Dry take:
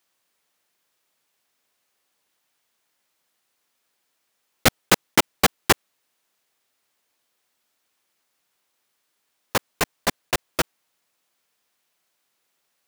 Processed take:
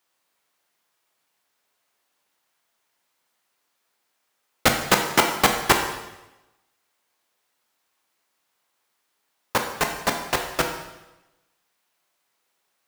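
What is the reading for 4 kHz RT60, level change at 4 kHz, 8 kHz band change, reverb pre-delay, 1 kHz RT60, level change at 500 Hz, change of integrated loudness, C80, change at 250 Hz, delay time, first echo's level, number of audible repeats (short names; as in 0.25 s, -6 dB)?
0.95 s, -0.5 dB, -1.0 dB, 7 ms, 1.0 s, +1.0 dB, +0.5 dB, 8.5 dB, -0.5 dB, none, none, none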